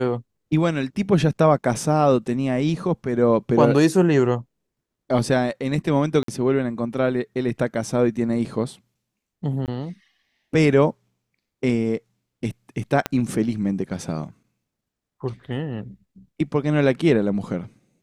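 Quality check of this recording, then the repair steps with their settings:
0:06.23–0:06.28: drop-out 53 ms
0:09.66–0:09.68: drop-out 18 ms
0:13.06: click −8 dBFS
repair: click removal
repair the gap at 0:06.23, 53 ms
repair the gap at 0:09.66, 18 ms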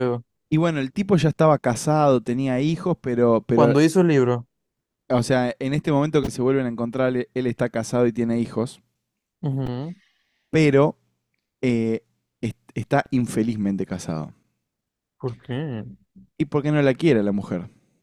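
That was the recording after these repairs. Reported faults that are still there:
0:13.06: click

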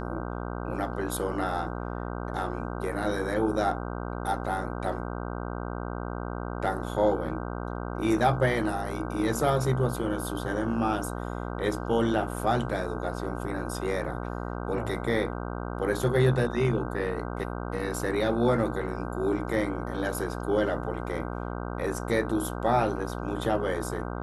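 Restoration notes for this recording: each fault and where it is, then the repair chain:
mains buzz 60 Hz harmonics 26 −34 dBFS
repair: hum removal 60 Hz, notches 26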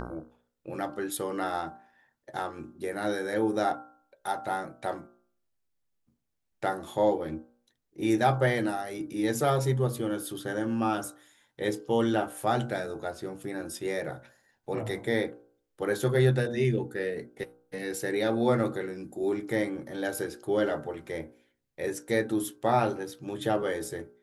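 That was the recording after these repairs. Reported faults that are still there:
none of them is left

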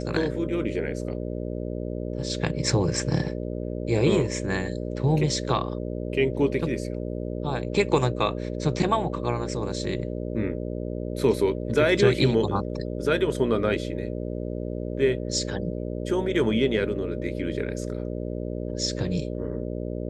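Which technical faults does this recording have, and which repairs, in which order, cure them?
mains buzz 60 Hz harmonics 10 −31 dBFS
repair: hum removal 60 Hz, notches 10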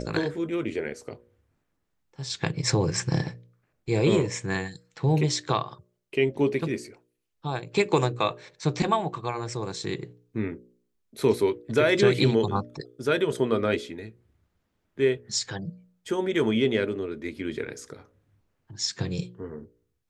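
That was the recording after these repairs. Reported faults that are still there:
none of them is left

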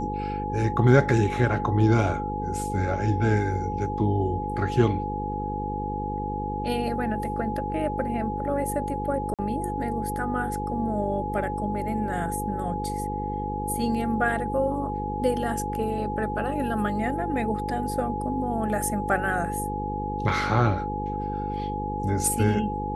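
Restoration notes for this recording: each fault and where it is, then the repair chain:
mains buzz 50 Hz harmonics 10 −32 dBFS
whistle 840 Hz −30 dBFS
0:09.34–0:09.39: drop-out 47 ms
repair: hum removal 50 Hz, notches 10
notch filter 840 Hz, Q 30
repair the gap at 0:09.34, 47 ms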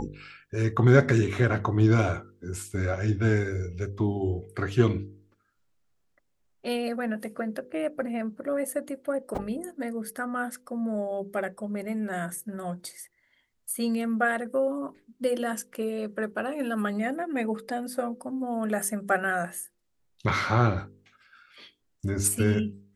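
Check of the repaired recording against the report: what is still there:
none of them is left

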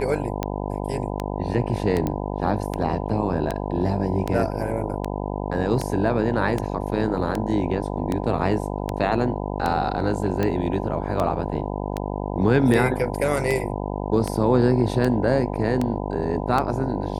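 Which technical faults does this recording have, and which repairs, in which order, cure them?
mains buzz 50 Hz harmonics 20 −28 dBFS
scratch tick 78 rpm −11 dBFS
0:02.07: click −13 dBFS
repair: click removal
hum removal 50 Hz, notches 20

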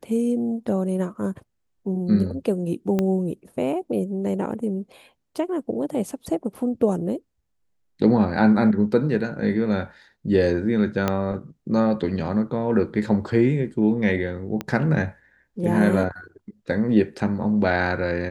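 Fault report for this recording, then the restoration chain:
0:02.99: click −11 dBFS
0:11.08: click −8 dBFS
0:14.61: click −14 dBFS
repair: click removal

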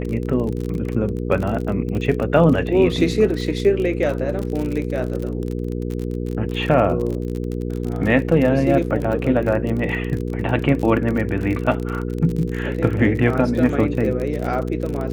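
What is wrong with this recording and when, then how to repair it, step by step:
surface crackle 41 per second −25 dBFS
mains hum 60 Hz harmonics 8 −25 dBFS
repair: click removal
hum removal 60 Hz, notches 8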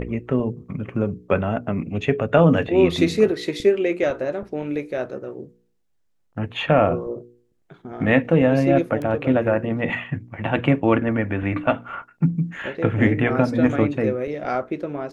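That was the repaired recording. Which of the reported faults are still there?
none of them is left

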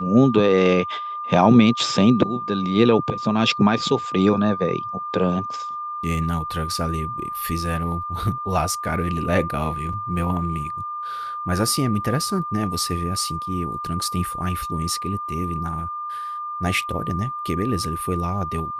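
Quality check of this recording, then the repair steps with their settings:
whistle 1,200 Hz −27 dBFS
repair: notch filter 1,200 Hz, Q 30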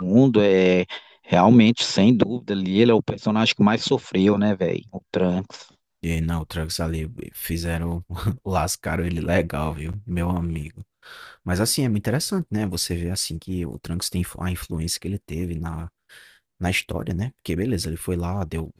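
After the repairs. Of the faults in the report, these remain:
none of them is left

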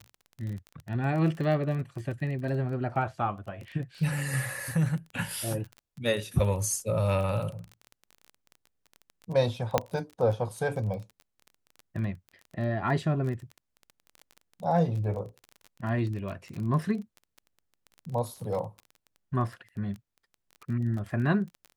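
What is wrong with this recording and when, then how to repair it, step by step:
surface crackle 20 per second −35 dBFS
0:09.78: click −8 dBFS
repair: click removal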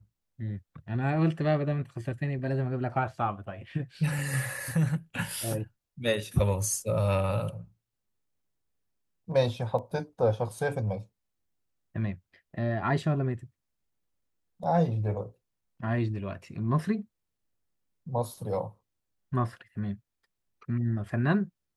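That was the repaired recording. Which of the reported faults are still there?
0:09.78: click

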